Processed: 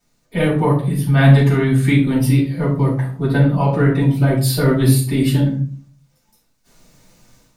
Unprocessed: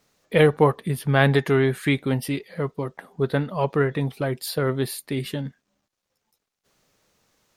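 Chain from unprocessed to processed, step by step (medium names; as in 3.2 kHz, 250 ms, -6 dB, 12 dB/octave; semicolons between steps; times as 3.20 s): tone controls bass +7 dB, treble +6 dB; level rider gain up to 12.5 dB; simulated room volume 350 m³, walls furnished, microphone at 7.5 m; trim -13.5 dB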